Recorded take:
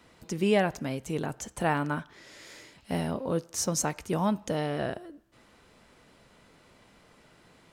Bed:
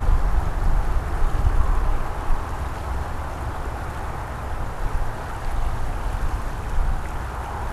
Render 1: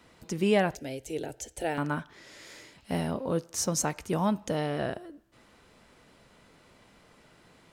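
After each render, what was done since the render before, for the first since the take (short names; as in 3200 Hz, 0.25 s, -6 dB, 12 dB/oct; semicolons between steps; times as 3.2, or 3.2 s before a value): 0.75–1.78 fixed phaser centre 460 Hz, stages 4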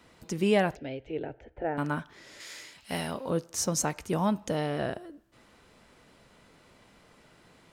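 0.74–1.77 LPF 3900 Hz -> 1600 Hz 24 dB/oct; 2.4–3.3 tilt shelf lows -6 dB, about 860 Hz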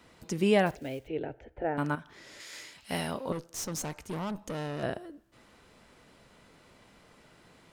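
0.66–1.08 companded quantiser 6-bit; 1.95–2.53 compressor 2.5:1, threshold -43 dBFS; 3.32–4.83 tube stage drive 32 dB, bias 0.65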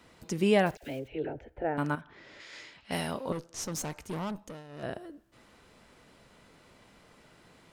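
0.77–1.39 dispersion lows, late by 56 ms, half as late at 1000 Hz; 2.01–3.65 low-pass opened by the level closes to 2500 Hz, open at -31.5 dBFS; 4.27–5.04 dip -14 dB, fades 0.36 s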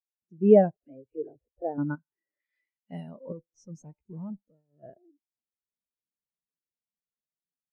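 AGC gain up to 9 dB; spectral expander 2.5:1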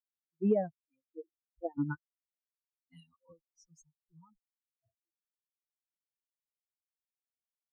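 per-bin expansion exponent 3; compressor 4:1, threshold -26 dBFS, peak gain reduction 12 dB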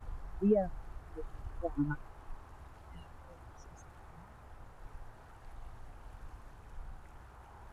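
add bed -25 dB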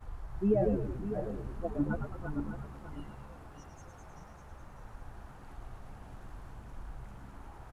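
regenerating reverse delay 0.3 s, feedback 53%, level -4.5 dB; on a send: frequency-shifting echo 0.108 s, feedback 62%, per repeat -75 Hz, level -7 dB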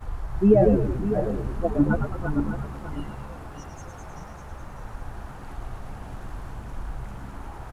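gain +11 dB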